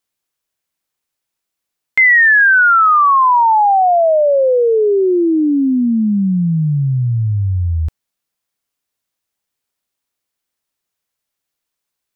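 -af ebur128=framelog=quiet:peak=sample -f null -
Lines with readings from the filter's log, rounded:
Integrated loudness:
  I:         -11.8 LUFS
  Threshold: -21.9 LUFS
Loudness range:
  LRA:        12.7 LU
  Threshold: -33.2 LUFS
  LRA low:   -22.7 LUFS
  LRA high:  -10.0 LUFS
Sample peak:
  Peak:       -5.6 dBFS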